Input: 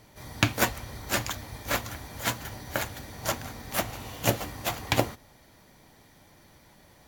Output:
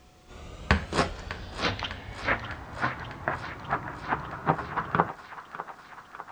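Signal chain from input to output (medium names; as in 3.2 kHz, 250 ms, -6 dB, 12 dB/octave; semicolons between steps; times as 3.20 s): gliding tape speed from 54% -> 170%; whistle 730 Hz -62 dBFS; low-pass sweep 8.2 kHz -> 1.4 kHz, 1.04–2.65 s; added noise violet -46 dBFS; distance through air 160 m; thinning echo 601 ms, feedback 72%, high-pass 560 Hz, level -12 dB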